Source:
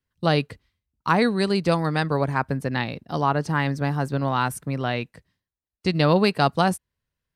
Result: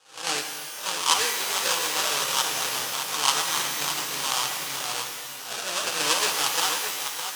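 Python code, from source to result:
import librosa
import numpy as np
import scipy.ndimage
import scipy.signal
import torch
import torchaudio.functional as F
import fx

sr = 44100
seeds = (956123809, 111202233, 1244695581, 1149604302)

y = fx.spec_swells(x, sr, rise_s=0.41)
y = fx.peak_eq(y, sr, hz=350.0, db=-13.0, octaves=0.23)
y = fx.fixed_phaser(y, sr, hz=970.0, stages=8)
y = y + 0.45 * np.pad(y, (int(6.4 * sr / 1000.0), 0))[:len(y)]
y = y + 10.0 ** (-8.0 / 20.0) * np.pad(y, (int(612 * sr / 1000.0), 0))[:len(y)]
y = fx.echo_pitch(y, sr, ms=635, semitones=3, count=3, db_per_echo=-6.0)
y = fx.sample_hold(y, sr, seeds[0], rate_hz=2100.0, jitter_pct=20)
y = fx.weighting(y, sr, curve='ITU-R 468')
y = fx.rev_shimmer(y, sr, seeds[1], rt60_s=1.8, semitones=12, shimmer_db=-2, drr_db=5.0)
y = y * librosa.db_to_amplitude(-5.0)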